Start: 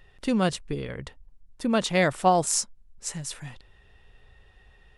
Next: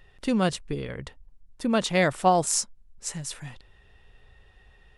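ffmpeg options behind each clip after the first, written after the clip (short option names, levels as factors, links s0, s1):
-af anull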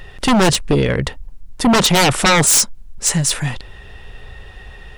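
-af "aeval=exprs='0.376*sin(PI/2*5.62*val(0)/0.376)':c=same,acrusher=bits=11:mix=0:aa=0.000001"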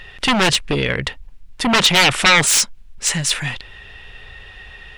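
-af "equalizer=f=2600:w=0.6:g=11,volume=0.501"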